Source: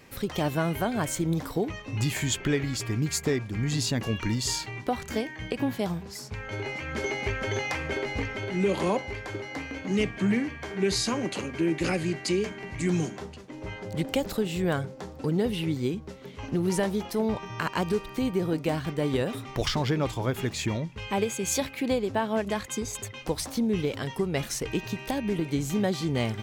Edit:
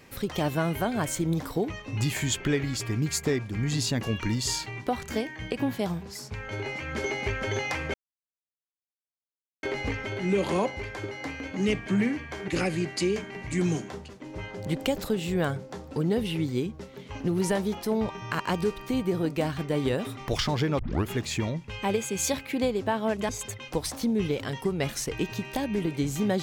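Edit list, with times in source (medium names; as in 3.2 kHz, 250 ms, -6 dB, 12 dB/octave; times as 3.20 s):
7.94 s: insert silence 1.69 s
10.79–11.76 s: delete
20.07 s: tape start 0.29 s
22.57–22.83 s: delete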